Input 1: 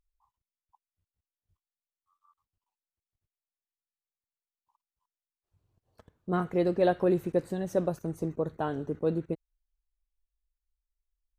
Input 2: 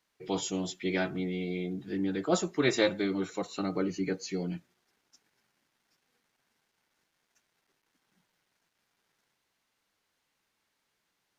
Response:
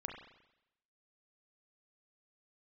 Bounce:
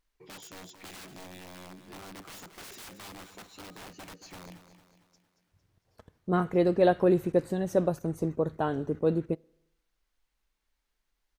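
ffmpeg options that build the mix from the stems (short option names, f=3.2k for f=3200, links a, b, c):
-filter_complex "[0:a]volume=2dB,asplit=2[a][b];[b]volume=-23dB[c];[1:a]aeval=exprs='(mod(25.1*val(0)+1,2)-1)/25.1':c=same,acompressor=threshold=-42dB:ratio=2,volume=-7dB,asplit=2[d][e];[e]volume=-11dB[f];[2:a]atrim=start_sample=2205[g];[c][g]afir=irnorm=-1:irlink=0[h];[f]aecho=0:1:227|454|681|908|1135|1362|1589:1|0.48|0.23|0.111|0.0531|0.0255|0.0122[i];[a][d][h][i]amix=inputs=4:normalize=0"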